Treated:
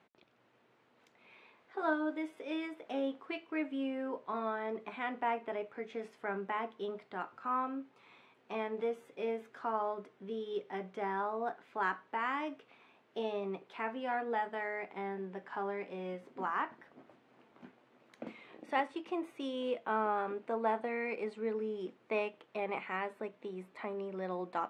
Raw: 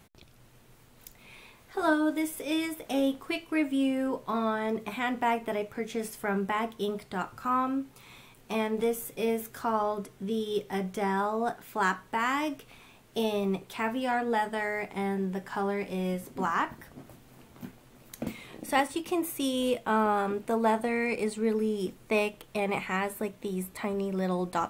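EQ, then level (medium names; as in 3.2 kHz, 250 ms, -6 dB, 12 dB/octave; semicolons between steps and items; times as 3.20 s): band-pass 300–2600 Hz; -6.0 dB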